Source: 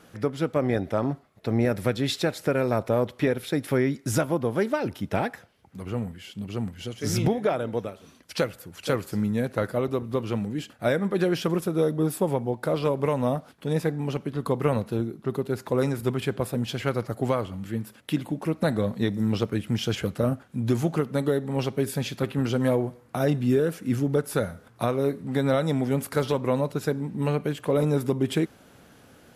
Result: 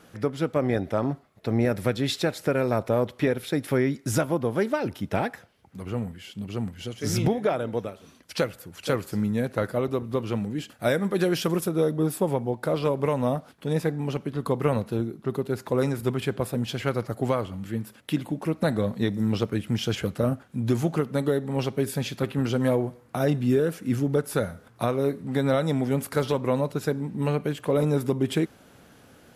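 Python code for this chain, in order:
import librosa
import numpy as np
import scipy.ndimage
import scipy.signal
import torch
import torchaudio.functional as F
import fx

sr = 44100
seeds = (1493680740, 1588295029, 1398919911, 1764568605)

y = fx.high_shelf(x, sr, hz=4700.0, db=7.5, at=(10.69, 11.69))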